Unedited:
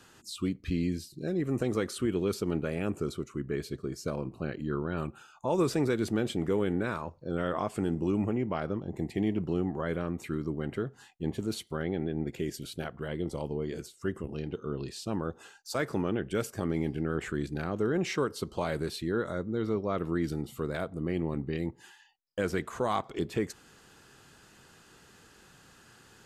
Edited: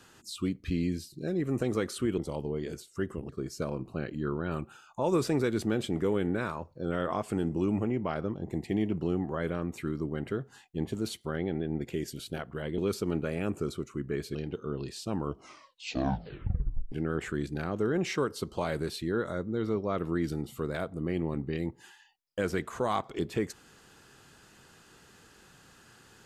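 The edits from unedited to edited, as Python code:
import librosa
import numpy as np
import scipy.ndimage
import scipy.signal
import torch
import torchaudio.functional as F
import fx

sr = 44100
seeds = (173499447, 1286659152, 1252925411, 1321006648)

y = fx.edit(x, sr, fx.swap(start_s=2.18, length_s=1.57, other_s=13.24, other_length_s=1.11),
    fx.tape_stop(start_s=15.08, length_s=1.84), tone=tone)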